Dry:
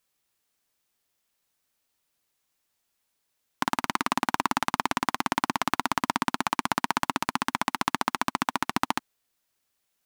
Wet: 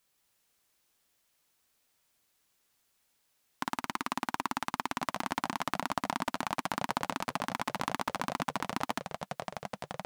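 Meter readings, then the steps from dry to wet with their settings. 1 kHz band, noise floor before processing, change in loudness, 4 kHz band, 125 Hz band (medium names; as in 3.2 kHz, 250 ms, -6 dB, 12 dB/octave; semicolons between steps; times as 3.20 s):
-7.0 dB, -78 dBFS, -7.0 dB, -7.0 dB, -3.5 dB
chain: companding laws mixed up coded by mu; ever faster or slower copies 179 ms, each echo -5 st, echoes 2, each echo -6 dB; trim -8 dB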